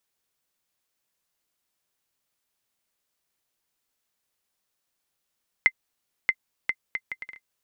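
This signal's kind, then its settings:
bouncing ball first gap 0.63 s, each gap 0.64, 2,070 Hz, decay 56 ms −6 dBFS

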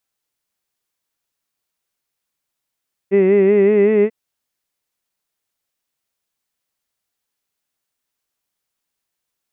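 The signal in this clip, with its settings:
vowel from formants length 0.99 s, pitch 191 Hz, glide +2 semitones, vibrato depth 0.75 semitones, F1 400 Hz, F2 2,000 Hz, F3 2,600 Hz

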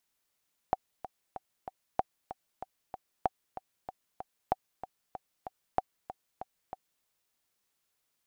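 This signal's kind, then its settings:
click track 190 BPM, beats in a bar 4, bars 5, 757 Hz, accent 13.5 dB −12.5 dBFS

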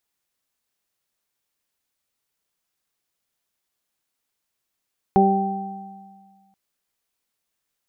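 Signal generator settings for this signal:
harmonic partials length 1.38 s, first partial 195 Hz, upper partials 0/−13.5/1.5 dB, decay 1.77 s, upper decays 1.06/0.70/1.75 s, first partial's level −15.5 dB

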